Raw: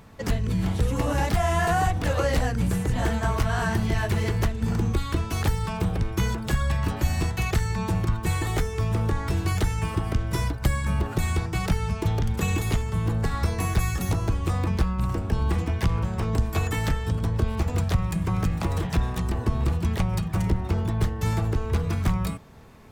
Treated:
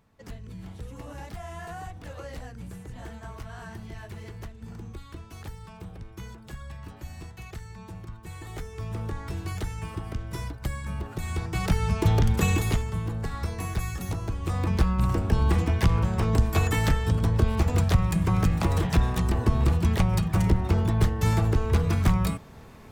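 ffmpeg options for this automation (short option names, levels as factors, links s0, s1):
-af "volume=3.98,afade=t=in:st=8.3:d=0.7:silence=0.398107,afade=t=in:st=11.22:d=0.97:silence=0.251189,afade=t=out:st=12.19:d=0.9:silence=0.316228,afade=t=in:st=14.36:d=0.56:silence=0.398107"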